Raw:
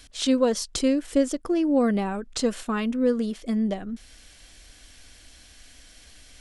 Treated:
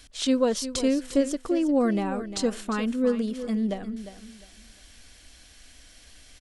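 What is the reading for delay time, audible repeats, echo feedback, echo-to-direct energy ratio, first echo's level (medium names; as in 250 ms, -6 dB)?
352 ms, 2, 24%, -11.5 dB, -12.0 dB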